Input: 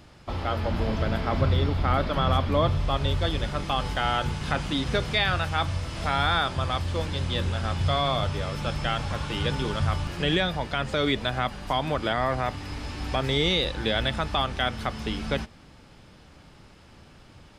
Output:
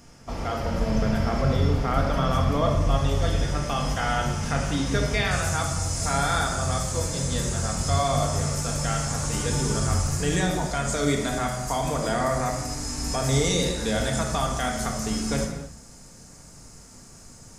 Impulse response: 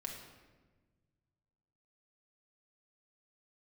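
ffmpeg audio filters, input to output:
-filter_complex "[0:a]asetnsamples=n=441:p=0,asendcmd='5.31 highshelf g 14',highshelf=f=4800:t=q:w=3:g=6.5[s0];[1:a]atrim=start_sample=2205,afade=t=out:st=0.38:d=0.01,atrim=end_sample=17199[s1];[s0][s1]afir=irnorm=-1:irlink=0,volume=1.33"

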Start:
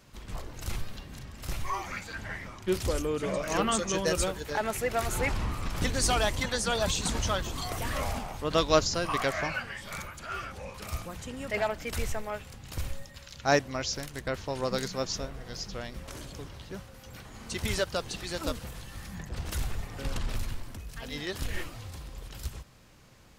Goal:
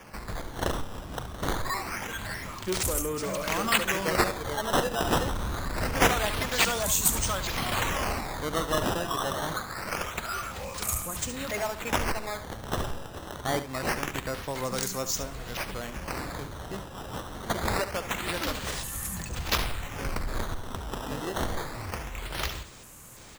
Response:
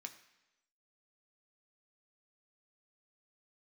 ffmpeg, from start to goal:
-filter_complex "[0:a]equalizer=f=1100:t=o:w=0.77:g=4.5,asplit=2[s0][s1];[s1]acompressor=threshold=0.0126:ratio=6,volume=1.26[s2];[s0][s2]amix=inputs=2:normalize=0,asoftclip=type=tanh:threshold=0.1,acrossover=split=470[s3][s4];[s4]aexciter=amount=6.1:drive=5.5:freq=6700[s5];[s3][s5]amix=inputs=2:normalize=0,acrusher=samples=11:mix=1:aa=0.000001:lfo=1:lforange=17.6:lforate=0.25,aecho=1:1:71:0.251,volume=0.708"

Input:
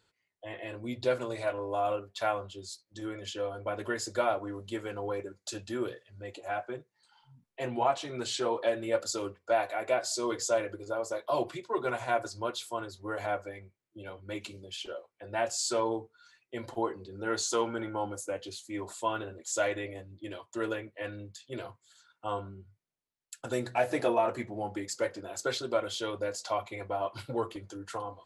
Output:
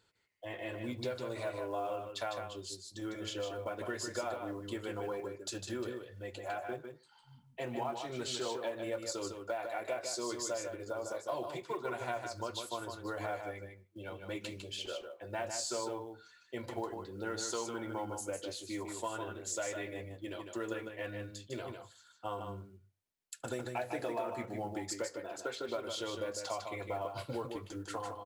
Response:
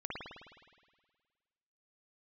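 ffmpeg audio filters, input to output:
-filter_complex "[0:a]asettb=1/sr,asplit=3[s0][s1][s2];[s0]atrim=end=25.054[s3];[s1]atrim=start=25.05:end=25.69,asetpts=PTS-STARTPTS,afade=t=in:d=0.004:c=qsin,afade=t=out:st=0.636:d=0.004:c=qsin,bass=f=250:g=-8,treble=f=4000:g=-10[s4];[s2]atrim=start=25.686[s5];[s3][s4]acrossfade=d=0.004:c1=hsin:c2=qsin[s6];[s6][s5]acrossfade=d=0.004:c1=qsin:c2=hsin,acompressor=threshold=0.0178:ratio=4,acrusher=bits=8:mode=log:mix=0:aa=0.000001,aecho=1:1:153:0.501,asplit=2[s7][s8];[1:a]atrim=start_sample=2205,atrim=end_sample=4410,adelay=73[s9];[s8][s9]afir=irnorm=-1:irlink=0,volume=0.075[s10];[s7][s10]amix=inputs=2:normalize=0,volume=0.891"

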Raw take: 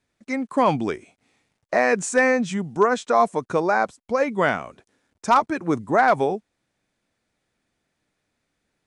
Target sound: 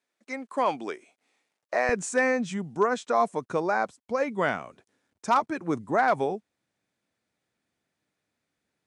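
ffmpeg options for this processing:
-af "asetnsamples=n=441:p=0,asendcmd='1.89 highpass f 85',highpass=370,volume=0.531"

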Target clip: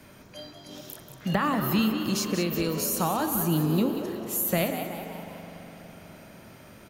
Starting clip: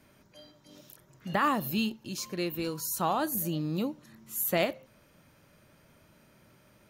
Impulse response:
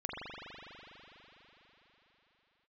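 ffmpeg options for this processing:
-filter_complex "[0:a]acrossover=split=170[s0][s1];[s1]acompressor=threshold=0.0112:ratio=2.5[s2];[s0][s2]amix=inputs=2:normalize=0,asplit=6[s3][s4][s5][s6][s7][s8];[s4]adelay=185,afreqshift=86,volume=0.335[s9];[s5]adelay=370,afreqshift=172,volume=0.16[s10];[s6]adelay=555,afreqshift=258,volume=0.0767[s11];[s7]adelay=740,afreqshift=344,volume=0.0372[s12];[s8]adelay=925,afreqshift=430,volume=0.0178[s13];[s3][s9][s10][s11][s12][s13]amix=inputs=6:normalize=0,asplit=2[s14][s15];[1:a]atrim=start_sample=2205[s16];[s15][s16]afir=irnorm=-1:irlink=0,volume=0.316[s17];[s14][s17]amix=inputs=2:normalize=0,volume=2.66"

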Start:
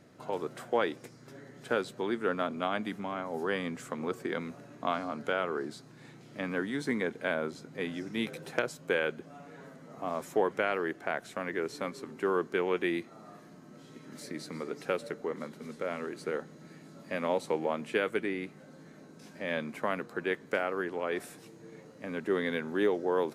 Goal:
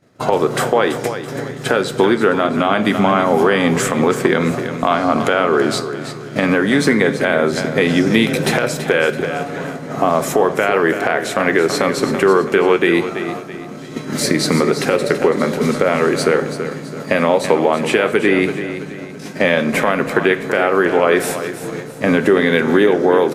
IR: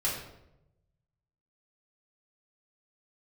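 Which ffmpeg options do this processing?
-filter_complex "[0:a]agate=range=0.0224:threshold=0.00708:ratio=3:detection=peak,acompressor=threshold=0.0112:ratio=6,aecho=1:1:331|662|993|1324:0.282|0.11|0.0429|0.0167,asplit=2[s0][s1];[1:a]atrim=start_sample=2205[s2];[s1][s2]afir=irnorm=-1:irlink=0,volume=0.158[s3];[s0][s3]amix=inputs=2:normalize=0,alimiter=level_in=26.6:limit=0.891:release=50:level=0:latency=1,volume=0.891"

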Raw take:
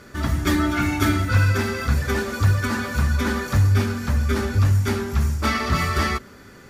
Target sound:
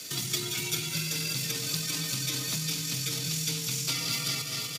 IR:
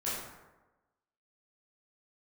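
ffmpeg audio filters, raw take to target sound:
-filter_complex "[0:a]asplit=2[s0][s1];[s1]aecho=0:1:337|674|1011|1348|1685|2022|2359:0.316|0.18|0.103|0.0586|0.0334|0.019|0.0108[s2];[s0][s2]amix=inputs=2:normalize=0,afreqshift=60,atempo=1.4,acrossover=split=140|1600|7100[s3][s4][s5][s6];[s3]acompressor=threshold=0.0158:ratio=4[s7];[s4]acompressor=threshold=0.0224:ratio=4[s8];[s5]acompressor=threshold=0.00631:ratio=4[s9];[s6]acompressor=threshold=0.00141:ratio=4[s10];[s7][s8][s9][s10]amix=inputs=4:normalize=0,asplit=2[s11][s12];[s12]aecho=0:1:203:0.355[s13];[s11][s13]amix=inputs=2:normalize=0,aexciter=amount=9.4:drive=7.9:freq=2500,volume=0.376"

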